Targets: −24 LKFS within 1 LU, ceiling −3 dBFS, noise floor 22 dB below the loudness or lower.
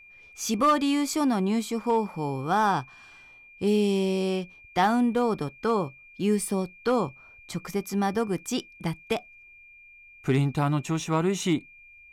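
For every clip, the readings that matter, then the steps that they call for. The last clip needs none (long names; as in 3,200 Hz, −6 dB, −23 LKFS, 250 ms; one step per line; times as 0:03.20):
share of clipped samples 0.2%; peaks flattened at −14.5 dBFS; interfering tone 2,400 Hz; level of the tone −49 dBFS; integrated loudness −26.5 LKFS; sample peak −14.5 dBFS; target loudness −24.0 LKFS
→ clipped peaks rebuilt −14.5 dBFS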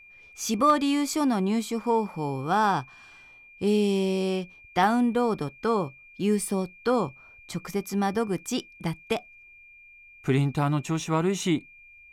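share of clipped samples 0.0%; interfering tone 2,400 Hz; level of the tone −49 dBFS
→ notch filter 2,400 Hz, Q 30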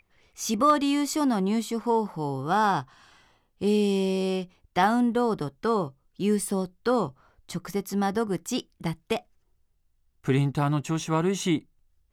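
interfering tone none found; integrated loudness −26.5 LKFS; sample peak −8.5 dBFS; target loudness −24.0 LKFS
→ level +2.5 dB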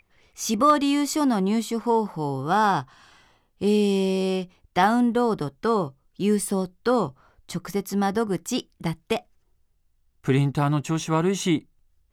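integrated loudness −24.0 LKFS; sample peak −6.0 dBFS; background noise floor −68 dBFS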